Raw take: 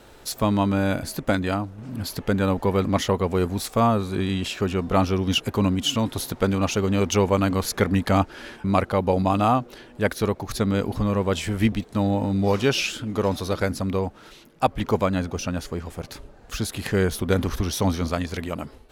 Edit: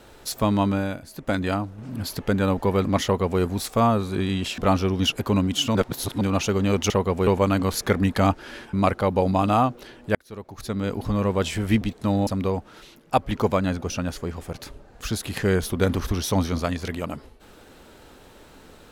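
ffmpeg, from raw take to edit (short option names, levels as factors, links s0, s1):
-filter_complex "[0:a]asplit=10[s0][s1][s2][s3][s4][s5][s6][s7][s8][s9];[s0]atrim=end=1.01,asetpts=PTS-STARTPTS,afade=t=out:st=0.68:d=0.33:silence=0.251189[s10];[s1]atrim=start=1.01:end=1.1,asetpts=PTS-STARTPTS,volume=0.251[s11];[s2]atrim=start=1.1:end=4.582,asetpts=PTS-STARTPTS,afade=t=in:d=0.33:silence=0.251189[s12];[s3]atrim=start=4.858:end=6.032[s13];[s4]atrim=start=6.028:end=6.492,asetpts=PTS-STARTPTS,areverse[s14];[s5]atrim=start=6.488:end=7.182[s15];[s6]atrim=start=3.038:end=3.412[s16];[s7]atrim=start=7.178:end=10.06,asetpts=PTS-STARTPTS,afade=t=out:st=2.878:d=0.004:c=hsin[s17];[s8]atrim=start=10.06:end=12.182,asetpts=PTS-STARTPTS,afade=t=in:d=1.07[s18];[s9]atrim=start=13.758[s19];[s10][s11][s12]concat=n=3:v=0:a=1[s20];[s20][s13]acrossfade=d=0.004:c1=hsin:c2=hsin[s21];[s21][s14]acrossfade=d=0.004:c1=hsin:c2=hsin[s22];[s22][s15]acrossfade=d=0.004:c1=hsin:c2=hsin[s23];[s23][s16]acrossfade=d=0.004:c1=hsin:c2=hsin[s24];[s17][s18]concat=n=2:v=0:a=1[s25];[s24][s25]acrossfade=d=0.004:c1=hsin:c2=hsin[s26];[s26][s19]acrossfade=d=0.004:c1=hsin:c2=hsin"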